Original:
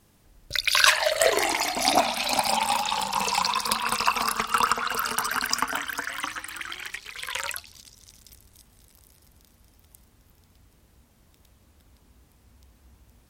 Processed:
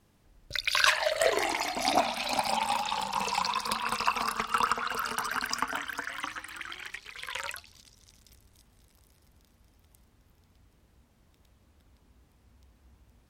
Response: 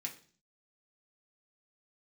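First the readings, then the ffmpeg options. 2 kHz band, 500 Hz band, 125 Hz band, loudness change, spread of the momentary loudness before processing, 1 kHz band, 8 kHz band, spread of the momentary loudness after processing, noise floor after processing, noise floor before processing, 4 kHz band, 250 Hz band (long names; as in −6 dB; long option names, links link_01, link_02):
−4.5 dB, −4.0 dB, −4.0 dB, −5.5 dB, 13 LU, −4.0 dB, −9.0 dB, 14 LU, −65 dBFS, −61 dBFS, −6.5 dB, −4.0 dB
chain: -af "highshelf=frequency=6100:gain=-8,volume=-4dB"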